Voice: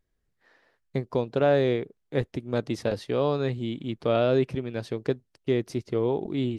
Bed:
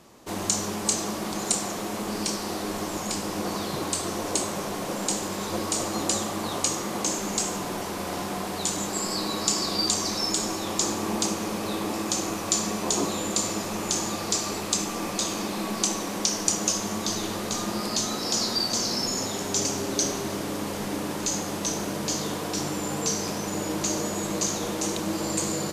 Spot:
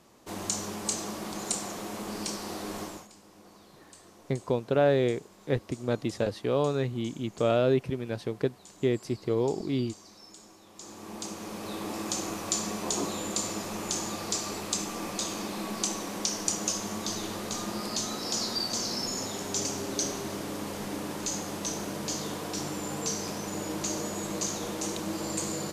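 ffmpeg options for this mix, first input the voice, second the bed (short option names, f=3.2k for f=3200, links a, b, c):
-filter_complex "[0:a]adelay=3350,volume=-1.5dB[a];[1:a]volume=13.5dB,afade=t=out:st=2.81:d=0.27:silence=0.11885,afade=t=in:st=10.73:d=1.34:silence=0.105925[b];[a][b]amix=inputs=2:normalize=0"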